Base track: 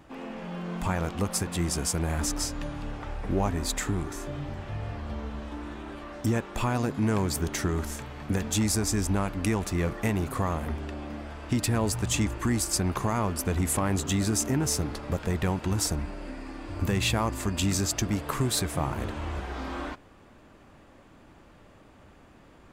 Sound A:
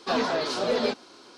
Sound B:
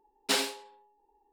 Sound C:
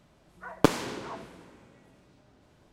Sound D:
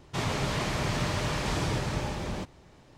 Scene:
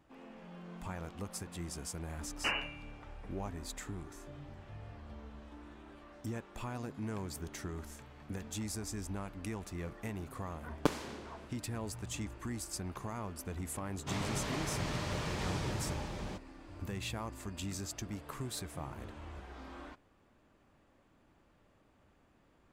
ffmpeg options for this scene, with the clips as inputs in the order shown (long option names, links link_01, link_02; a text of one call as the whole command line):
ffmpeg -i bed.wav -i cue0.wav -i cue1.wav -i cue2.wav -i cue3.wav -filter_complex "[0:a]volume=-14dB[link_01];[2:a]lowpass=frequency=2700:width_type=q:width=0.5098,lowpass=frequency=2700:width_type=q:width=0.6013,lowpass=frequency=2700:width_type=q:width=0.9,lowpass=frequency=2700:width_type=q:width=2.563,afreqshift=-3200,atrim=end=1.32,asetpts=PTS-STARTPTS,volume=-3dB,afade=type=in:duration=0.004:curve=hsin,afade=type=out:start_time=1.316:duration=0.004:curve=hsin,adelay=2150[link_02];[3:a]atrim=end=2.72,asetpts=PTS-STARTPTS,volume=-9.5dB,afade=type=in:duration=0.004:curve=hsin,afade=type=out:start_time=2.716:duration=0.004:curve=hsin,adelay=10210[link_03];[4:a]atrim=end=2.97,asetpts=PTS-STARTPTS,volume=-8dB,afade=type=in:duration=0.004:curve=hsin,afade=type=out:start_time=2.966:duration=0.004:curve=hsin,adelay=13930[link_04];[link_01][link_02][link_03][link_04]amix=inputs=4:normalize=0" out.wav